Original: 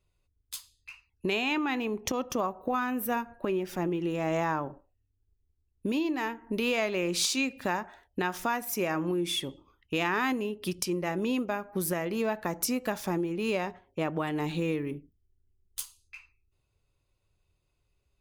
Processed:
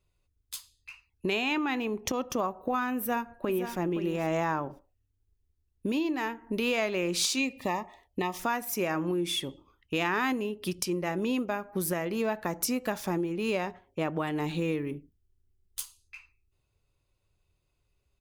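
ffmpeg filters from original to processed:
-filter_complex "[0:a]asplit=2[a][b];[b]afade=t=in:st=2.96:d=0.01,afade=t=out:st=3.75:d=0.01,aecho=0:1:520|1040:0.334965|0.0334965[c];[a][c]amix=inputs=2:normalize=0,asettb=1/sr,asplit=3[d][e][f];[d]atrim=end=7.394[g];[e]atrim=start=7.39:end=8.4,asetpts=PTS-STARTPTS,afade=t=in:d=0.004:c=qsin,afade=t=out:st=1.006:d=0.004:c=qsin,asuperstop=centerf=1500:order=8:qfactor=3[h];[f]atrim=start=8.396[i];[g][h]acrossfade=d=0.004:c1=hsin:c2=qsin[j];[j][i]acrossfade=d=0.004:c1=qsin:c2=hsin"

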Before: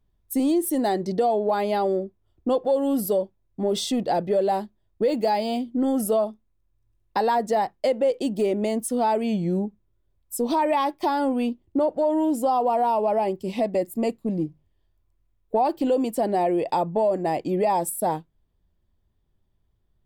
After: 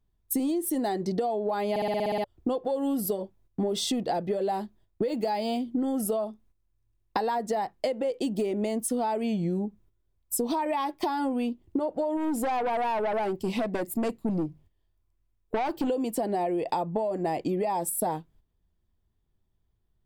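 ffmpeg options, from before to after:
-filter_complex "[0:a]asplit=3[a][b][c];[a]afade=t=out:st=12.16:d=0.02[d];[b]aeval=exprs='(tanh(14.1*val(0)+0.2)-tanh(0.2))/14.1':c=same,afade=t=in:st=12.16:d=0.02,afade=t=out:st=15.88:d=0.02[e];[c]afade=t=in:st=15.88:d=0.02[f];[d][e][f]amix=inputs=3:normalize=0,asplit=10[g][h][i][j][k][l][m][n][o][p];[g]atrim=end=1.762[q];[h]atrim=start=1.698:end=1.762[r];[i]atrim=start=1.698:end=1.762[s];[j]atrim=start=1.698:end=1.762[t];[k]atrim=start=1.698:end=1.762[u];[l]atrim=start=1.698:end=1.762[v];[m]atrim=start=1.698:end=1.762[w];[n]atrim=start=1.698:end=1.762[x];[o]atrim=start=1.698:end=1.762[y];[p]atrim=start=2.238[z];[q][r]acrossfade=d=0.004:c1=hsin:c2=hsin[aa];[aa][s]acrossfade=d=0.004:c1=hsin:c2=hsin[ab];[ab][t]acrossfade=d=0.004:c1=hsin:c2=hsin[ac];[ac][u]acrossfade=d=0.004:c1=hsin:c2=hsin[ad];[ad][v]acrossfade=d=0.004:c1=hsin:c2=hsin[ae];[ae][w]acrossfade=d=0.004:c1=hsin:c2=hsin[af];[af][x]acrossfade=d=0.004:c1=hsin:c2=hsin[ag];[ag][y]acrossfade=d=0.004:c1=hsin:c2=hsin[ah];[ah][z]acrossfade=d=0.004:c1=hsin:c2=hsin,agate=range=-9dB:threshold=-55dB:ratio=16:detection=peak,bandreject=f=570:w=12,acompressor=threshold=-30dB:ratio=12,volume=5dB"

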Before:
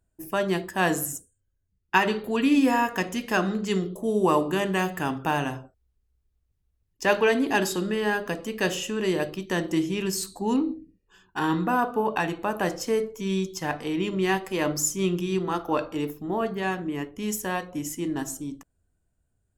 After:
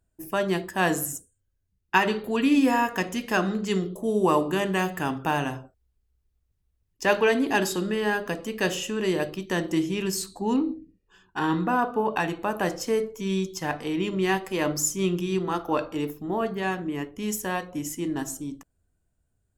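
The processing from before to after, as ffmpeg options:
-filter_complex "[0:a]asettb=1/sr,asplit=3[a][b][c];[a]atrim=end=10.224[d];[b]atrim=start=10.22:end=12.13,asetpts=PTS-STARTPTS,afade=t=in:d=0.004:c=qsin,afade=t=out:st=1.906:d=0.004:c=qsin,highshelf=f=9.6k:g=-10.5[e];[c]atrim=start=12.126[f];[d][e]acrossfade=d=0.004:c1=hsin:c2=qsin[g];[g][f]acrossfade=d=0.004:c1=qsin:c2=hsin"

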